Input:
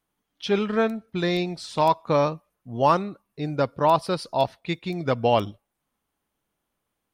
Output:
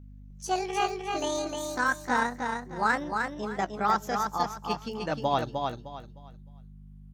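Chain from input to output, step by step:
pitch glide at a constant tempo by +11.5 semitones ending unshifted
mains hum 50 Hz, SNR 15 dB
repeating echo 306 ms, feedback 27%, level −4.5 dB
level −5.5 dB

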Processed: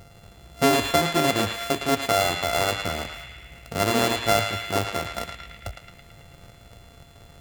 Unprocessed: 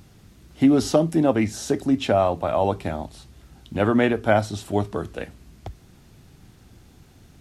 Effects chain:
samples sorted by size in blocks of 64 samples
in parallel at −1 dB: downward compressor, threshold −32 dBFS, peak gain reduction 18 dB
on the sum: parametric band 240 Hz −2.5 dB 0.76 octaves
feedback echo with a band-pass in the loop 110 ms, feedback 75%, band-pass 2,400 Hz, level −3 dB
level −3.5 dB

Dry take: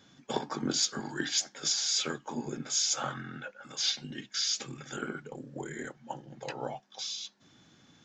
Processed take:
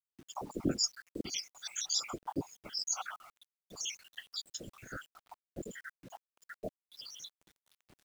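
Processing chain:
time-frequency cells dropped at random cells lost 80%
random phases in short frames
bit reduction 10 bits

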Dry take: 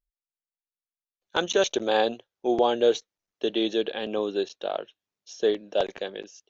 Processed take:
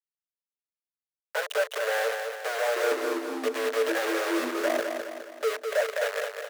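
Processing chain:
low-pass filter 1,700 Hz 12 dB per octave
downward compressor 5 to 1, threshold −26 dBFS, peak gain reduction 10 dB
brickwall limiter −21.5 dBFS, peak gain reduction 6.5 dB
leveller curve on the samples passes 2
bit reduction 5 bits
Chebyshev high-pass with heavy ripple 430 Hz, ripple 9 dB
0:02.61–0:04.80: delay with pitch and tempo change per echo 152 ms, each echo −5 semitones, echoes 2, each echo −6 dB
repeating echo 207 ms, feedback 49%, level −6 dB
level +5.5 dB

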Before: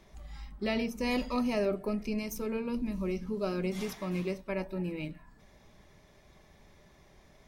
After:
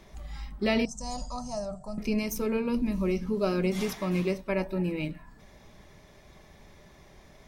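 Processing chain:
0:00.85–0:01.98: drawn EQ curve 140 Hz 0 dB, 380 Hz −29 dB, 700 Hz −2 dB, 1,400 Hz −13 dB, 2,300 Hz −30 dB, 7,600 Hz +12 dB, 13,000 Hz −28 dB
level +5.5 dB

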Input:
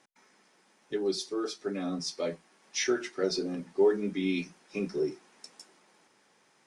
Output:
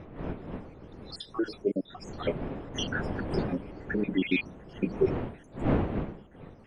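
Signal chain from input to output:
time-frequency cells dropped at random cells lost 74%
wind on the microphone 360 Hz −42 dBFS
high shelf with overshoot 4,200 Hz −12 dB, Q 1.5
level +6.5 dB

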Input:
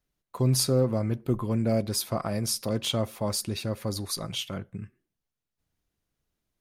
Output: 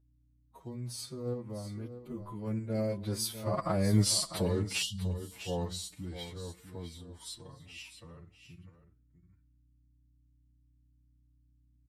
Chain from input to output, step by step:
pitch glide at a constant tempo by −3 semitones ending unshifted
source passing by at 0:02.26, 33 m/s, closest 6.8 metres
time-frequency box erased 0:02.68–0:02.96, 230–2,800 Hz
in parallel at +2 dB: output level in coarse steps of 10 dB
on the sum: mains hum 60 Hz, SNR 31 dB
phase-vocoder stretch with locked phases 1.8×
on a send: single-tap delay 648 ms −11.5 dB

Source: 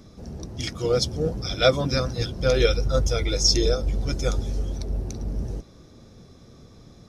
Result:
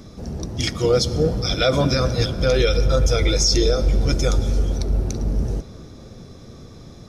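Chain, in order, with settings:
on a send at −15.5 dB: convolution reverb RT60 4.9 s, pre-delay 4 ms
on the sum: boost into a limiter +14.5 dB
level −7.5 dB

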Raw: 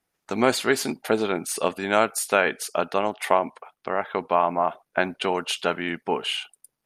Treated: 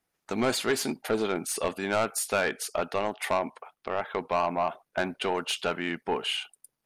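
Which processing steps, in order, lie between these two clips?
soft clipping −16 dBFS, distortion −10 dB
level −2 dB

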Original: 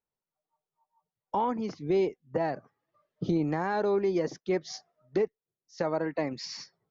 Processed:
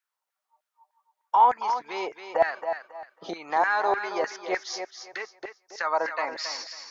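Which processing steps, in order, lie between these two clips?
feedback echo with a high-pass in the loop 273 ms, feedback 28%, high-pass 160 Hz, level −8 dB
auto-filter high-pass saw down 3.3 Hz 680–1,700 Hz
level +5.5 dB

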